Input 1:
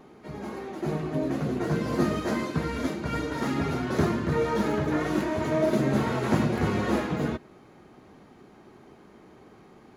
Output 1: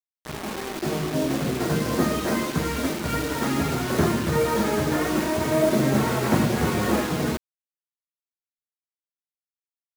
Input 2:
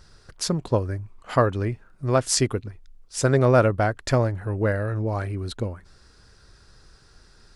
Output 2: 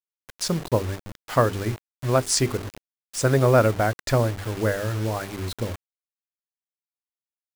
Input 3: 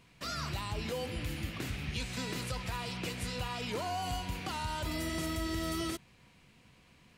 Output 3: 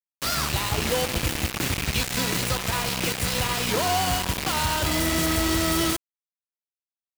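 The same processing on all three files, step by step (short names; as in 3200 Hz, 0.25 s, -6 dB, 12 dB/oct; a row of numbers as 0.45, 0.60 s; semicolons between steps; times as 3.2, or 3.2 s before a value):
notches 50/100/150/200/250/300/350/400/450 Hz; bit-crush 6-bit; match loudness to -24 LUFS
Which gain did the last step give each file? +4.0, +0.5, +11.0 dB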